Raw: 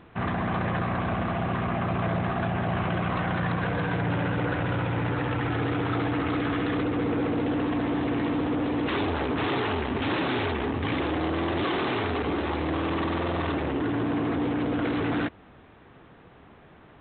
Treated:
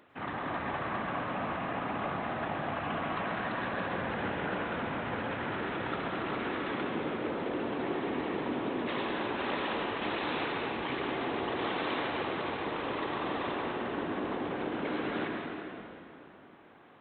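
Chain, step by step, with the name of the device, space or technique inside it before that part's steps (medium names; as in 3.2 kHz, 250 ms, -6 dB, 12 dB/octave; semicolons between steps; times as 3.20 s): whispering ghost (whisper effect; high-pass 440 Hz 6 dB/octave; reverberation RT60 3.0 s, pre-delay 90 ms, DRR 0 dB); trim -6.5 dB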